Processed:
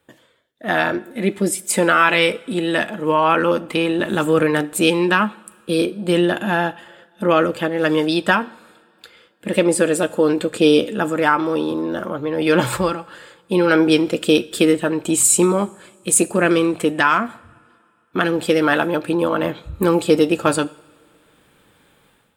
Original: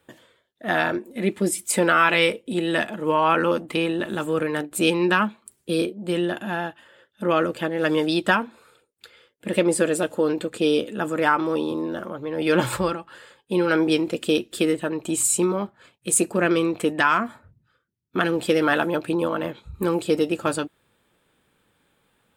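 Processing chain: level rider; two-slope reverb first 0.64 s, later 2.7 s, from -16 dB, DRR 17 dB; trim -1 dB

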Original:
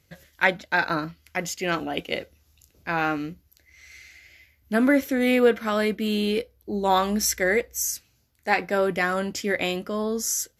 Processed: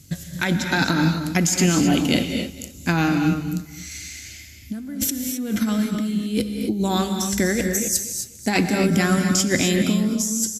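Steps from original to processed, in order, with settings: graphic EQ 125/250/500/1000/2000/8000 Hz +6/+9/-10/-6/-7/+11 dB; compressor with a negative ratio -29 dBFS, ratio -1; feedback delay 245 ms, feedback 24%, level -15 dB; gated-style reverb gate 290 ms rising, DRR 5 dB; trim +6 dB

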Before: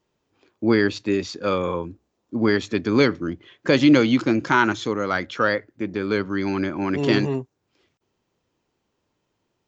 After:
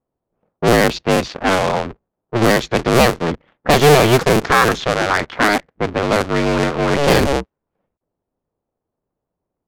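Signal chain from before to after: cycle switcher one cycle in 2, inverted; waveshaping leveller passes 2; level-controlled noise filter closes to 830 Hz, open at -9.5 dBFS

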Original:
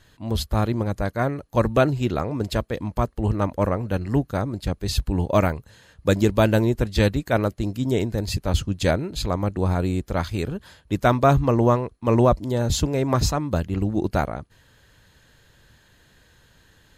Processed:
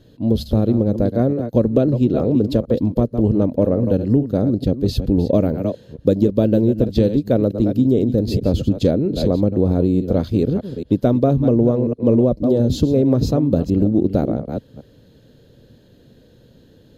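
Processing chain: chunks repeated in reverse 221 ms, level -11.5 dB; ten-band graphic EQ 125 Hz +7 dB, 250 Hz +12 dB, 500 Hz +12 dB, 1 kHz -8 dB, 2 kHz -9 dB, 4 kHz +4 dB, 8 kHz -10 dB; compression 5:1, threshold -12 dBFS, peak gain reduction 10.5 dB

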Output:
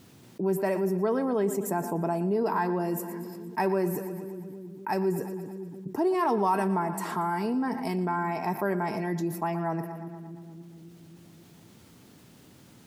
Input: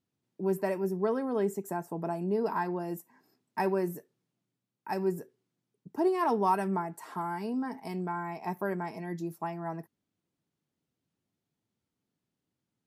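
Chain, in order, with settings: two-band feedback delay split 330 Hz, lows 269 ms, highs 117 ms, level -15.5 dB; level flattener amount 50%

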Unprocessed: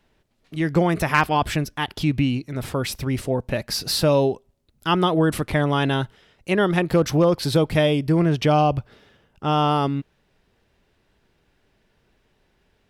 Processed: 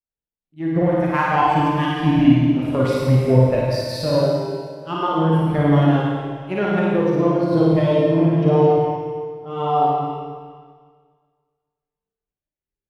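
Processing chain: gain riding 0.5 s; Chebyshev shaper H 7 -22 dB, 8 -43 dB, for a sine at -6.5 dBFS; on a send: flutter echo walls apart 9.5 m, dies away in 0.85 s; on the sum: Schroeder reverb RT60 2.6 s, combs from 31 ms, DRR -3.5 dB; spectral contrast expander 1.5:1

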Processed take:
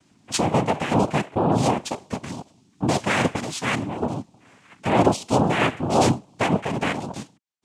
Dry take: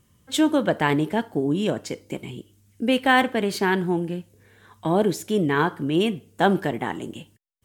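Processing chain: 3.35–4.02 s: peaking EQ 470 Hz -11 dB 2.7 oct; peak limiter -14 dBFS, peak gain reduction 8 dB; noise-vocoded speech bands 4; random flutter of the level, depth 60%; trim +6 dB

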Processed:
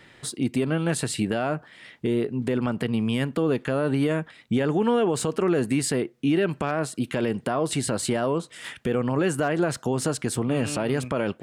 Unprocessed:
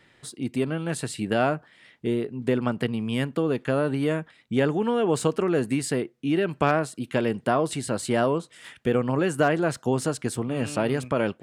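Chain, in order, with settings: in parallel at +1.5 dB: compression, threshold -30 dBFS, peak gain reduction 14 dB; on the sum: peak limiter -14 dBFS, peak gain reduction 10 dB

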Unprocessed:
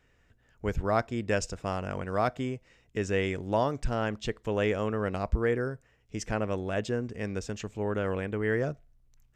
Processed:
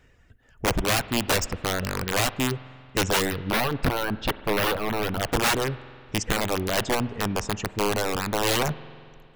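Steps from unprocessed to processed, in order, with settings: bass shelf 220 Hz +3.5 dB; integer overflow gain 22.5 dB; reverb removal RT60 0.92 s; 3.30–5.21 s: peaking EQ 7.2 kHz -15 dB 0.77 oct; spring tank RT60 2.3 s, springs 46 ms, chirp 55 ms, DRR 16 dB; trim +7 dB

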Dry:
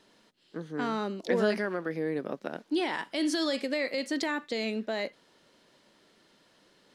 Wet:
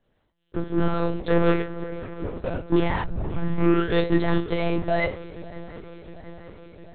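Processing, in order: tilt EQ -2 dB/octave; 1.61–2.39 s: compressor with a negative ratio -43 dBFS, ratio -1; waveshaping leveller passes 3; feedback comb 60 Hz, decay 0.31 s, harmonics all, mix 90%; 3.04 s: tape start 1.10 s; shuffle delay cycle 710 ms, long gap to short 3:1, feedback 67%, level -19.5 dB; monotone LPC vocoder at 8 kHz 170 Hz; trim +5 dB

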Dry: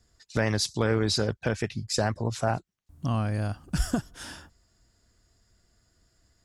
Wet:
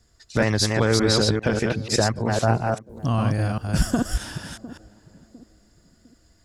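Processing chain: chunks repeated in reverse 199 ms, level -2.5 dB; on a send: band-passed feedback delay 704 ms, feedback 43%, band-pass 310 Hz, level -15.5 dB; on the sum: trim +4.5 dB

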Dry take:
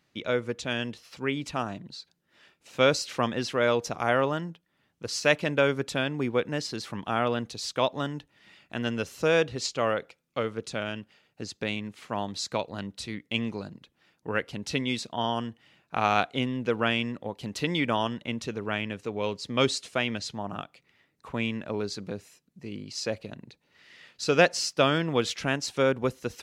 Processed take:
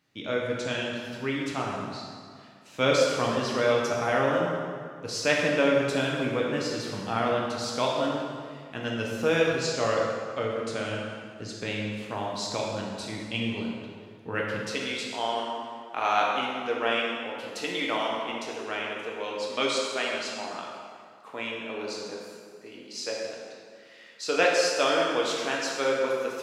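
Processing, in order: high-pass 71 Hz 12 dB/octave, from 14.59 s 390 Hz; plate-style reverb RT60 2.1 s, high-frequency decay 0.7×, DRR -3 dB; trim -3.5 dB

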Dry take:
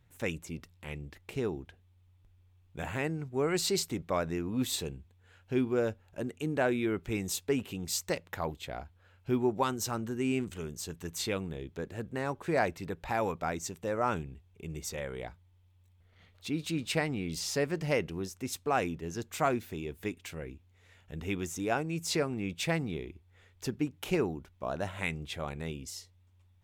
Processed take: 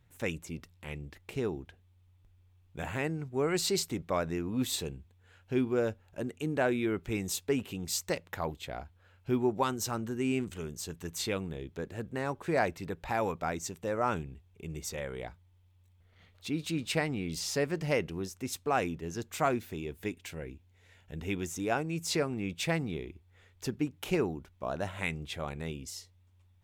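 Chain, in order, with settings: 20.01–21.51 s: band-stop 1.2 kHz, Q 7.5

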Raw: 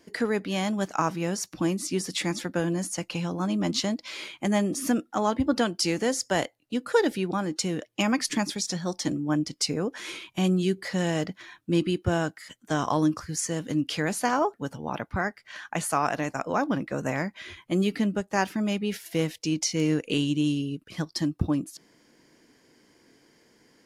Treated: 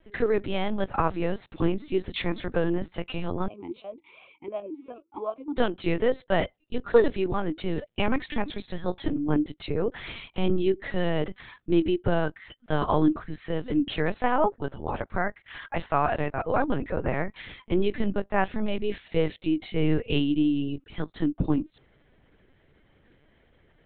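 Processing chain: dynamic bell 480 Hz, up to +4 dB, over -36 dBFS, Q 0.93; LPC vocoder at 8 kHz pitch kept; 3.48–5.57 s: talking filter a-u 2.7 Hz

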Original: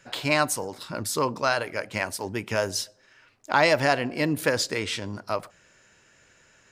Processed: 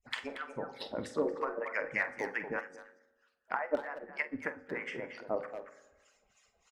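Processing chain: harmonic-percussive separation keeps percussive; low-pass that closes with the level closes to 640 Hz, closed at -23.5 dBFS; de-esser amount 70%; peaking EQ 1.9 kHz +11 dB 0.67 oct; touch-sensitive phaser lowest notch 240 Hz, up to 3.9 kHz, full sweep at -32.5 dBFS; harmonic tremolo 3.2 Hz, depth 100%, crossover 820 Hz; doubling 47 ms -11 dB; speakerphone echo 230 ms, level -8 dB; reverberation RT60 1.2 s, pre-delay 3 ms, DRR 11 dB; 2.59–4.74 s: upward expansion 1.5:1, over -44 dBFS

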